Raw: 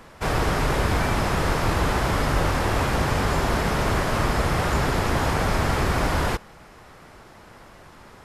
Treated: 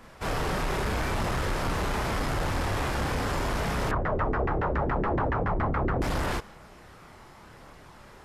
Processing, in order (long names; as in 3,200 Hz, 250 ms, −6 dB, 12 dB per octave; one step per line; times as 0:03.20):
multi-voice chorus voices 2, 0.39 Hz, delay 30 ms, depth 2.8 ms
soft clipping −23 dBFS, distortion −13 dB
0:03.91–0:06.02: auto-filter low-pass saw down 7.1 Hz 300–1,900 Hz